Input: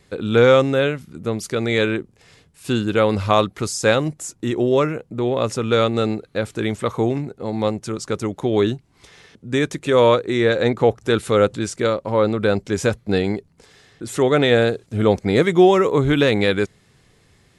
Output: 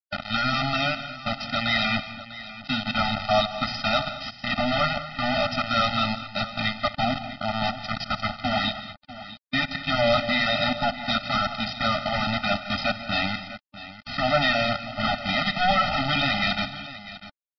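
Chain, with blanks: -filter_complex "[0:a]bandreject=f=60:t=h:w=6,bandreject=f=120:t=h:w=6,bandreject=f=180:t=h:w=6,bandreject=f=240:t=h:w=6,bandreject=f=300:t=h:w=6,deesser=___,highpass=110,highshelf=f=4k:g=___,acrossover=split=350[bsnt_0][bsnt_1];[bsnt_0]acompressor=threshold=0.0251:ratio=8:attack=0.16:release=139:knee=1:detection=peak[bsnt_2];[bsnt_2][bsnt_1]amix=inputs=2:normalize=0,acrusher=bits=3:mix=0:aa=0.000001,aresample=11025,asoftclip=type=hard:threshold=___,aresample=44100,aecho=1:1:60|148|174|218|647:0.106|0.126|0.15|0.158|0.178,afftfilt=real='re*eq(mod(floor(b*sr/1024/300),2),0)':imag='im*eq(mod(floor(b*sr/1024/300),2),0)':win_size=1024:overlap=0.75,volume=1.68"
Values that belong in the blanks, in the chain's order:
0.55, 9, 0.141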